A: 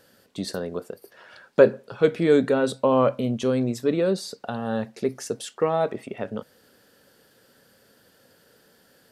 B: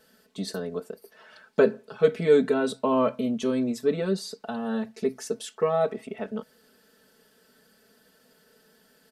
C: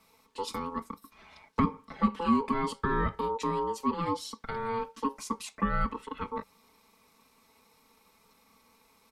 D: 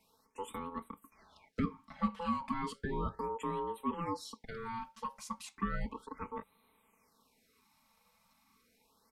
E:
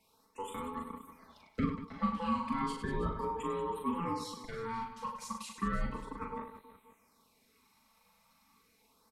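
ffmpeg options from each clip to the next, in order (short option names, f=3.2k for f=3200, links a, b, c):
-af "aecho=1:1:4.6:0.99,volume=-5.5dB"
-filter_complex "[0:a]aeval=exprs='val(0)*sin(2*PI*680*n/s)':c=same,acrossover=split=290[a][b];[b]acompressor=threshold=-28dB:ratio=4[c];[a][c]amix=inputs=2:normalize=0"
-af "afftfilt=real='re*(1-between(b*sr/1024,310*pow(6100/310,0.5+0.5*sin(2*PI*0.34*pts/sr))/1.41,310*pow(6100/310,0.5+0.5*sin(2*PI*0.34*pts/sr))*1.41))':imag='im*(1-between(b*sr/1024,310*pow(6100/310,0.5+0.5*sin(2*PI*0.34*pts/sr))/1.41,310*pow(6100/310,0.5+0.5*sin(2*PI*0.34*pts/sr))*1.41))':win_size=1024:overlap=0.75,volume=-6.5dB"
-af "aecho=1:1:40|100|190|325|527.5:0.631|0.398|0.251|0.158|0.1"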